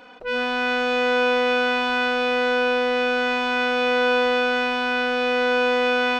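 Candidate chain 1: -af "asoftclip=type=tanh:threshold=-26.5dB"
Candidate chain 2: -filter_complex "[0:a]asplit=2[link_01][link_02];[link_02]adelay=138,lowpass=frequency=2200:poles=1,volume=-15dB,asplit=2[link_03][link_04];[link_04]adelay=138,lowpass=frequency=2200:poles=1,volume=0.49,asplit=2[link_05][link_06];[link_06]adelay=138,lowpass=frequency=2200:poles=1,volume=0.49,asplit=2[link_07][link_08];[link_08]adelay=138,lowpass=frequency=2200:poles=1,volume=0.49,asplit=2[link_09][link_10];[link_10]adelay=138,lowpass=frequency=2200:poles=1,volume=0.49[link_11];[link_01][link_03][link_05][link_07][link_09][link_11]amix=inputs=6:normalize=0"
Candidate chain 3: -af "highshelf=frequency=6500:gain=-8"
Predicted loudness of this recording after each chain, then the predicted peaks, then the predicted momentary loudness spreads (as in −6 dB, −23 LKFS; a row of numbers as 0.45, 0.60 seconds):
−28.5, −21.5, −21.0 LKFS; −26.5, −9.5, −10.0 dBFS; 1, 2, 3 LU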